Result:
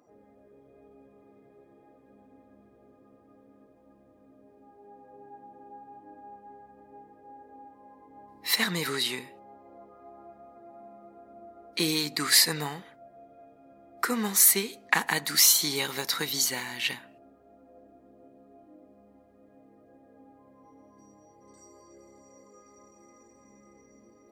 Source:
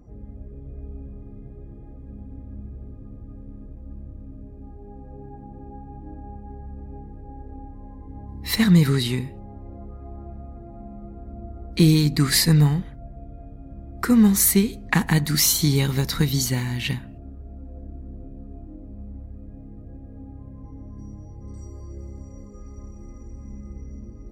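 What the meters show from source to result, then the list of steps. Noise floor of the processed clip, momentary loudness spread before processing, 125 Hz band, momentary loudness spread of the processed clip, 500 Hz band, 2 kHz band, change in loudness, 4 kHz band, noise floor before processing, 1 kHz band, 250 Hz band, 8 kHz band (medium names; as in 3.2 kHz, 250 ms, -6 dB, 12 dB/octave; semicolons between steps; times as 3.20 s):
-59 dBFS, 23 LU, -22.5 dB, 16 LU, -6.0 dB, 0.0 dB, -4.5 dB, 0.0 dB, -42 dBFS, -0.5 dB, -15.5 dB, 0.0 dB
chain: high-pass 560 Hz 12 dB/octave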